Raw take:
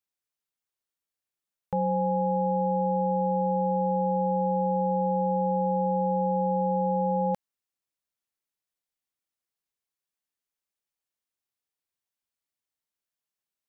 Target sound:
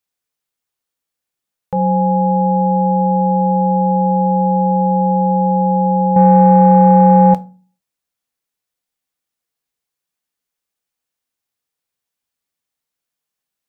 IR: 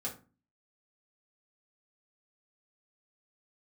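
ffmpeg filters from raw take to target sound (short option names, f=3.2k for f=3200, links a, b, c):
-filter_complex "[0:a]asplit=2[a][b];[1:a]atrim=start_sample=2205[c];[b][c]afir=irnorm=-1:irlink=0,volume=-7dB[d];[a][d]amix=inputs=2:normalize=0,asettb=1/sr,asplit=3[e][f][g];[e]atrim=end=6.164[h];[f]atrim=start=6.16:end=7.34,asetpts=PTS-STARTPTS,afade=t=in:d=0.004:c=qsin,afade=t=out:st=1.176:d=0.004:c=qsin,acontrast=67[i];[g]atrim=start=7.336[j];[h][i]acrossfade=d=0.004:c1=hsin:c2=qsin[k];[k][j]acrossfade=d=0.004:c1=qsin:c2=hsin,volume=5.5dB"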